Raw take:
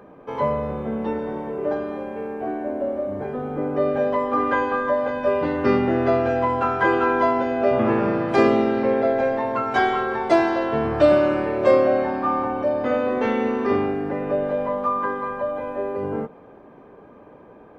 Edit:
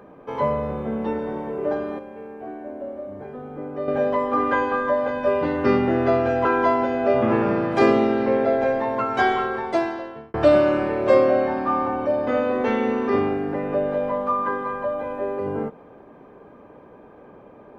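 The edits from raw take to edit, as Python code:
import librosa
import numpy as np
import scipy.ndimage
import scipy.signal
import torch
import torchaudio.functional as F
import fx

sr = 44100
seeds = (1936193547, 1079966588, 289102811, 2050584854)

y = fx.edit(x, sr, fx.clip_gain(start_s=1.99, length_s=1.89, db=-7.5),
    fx.cut(start_s=6.45, length_s=0.57),
    fx.fade_out_span(start_s=9.92, length_s=0.99), tone=tone)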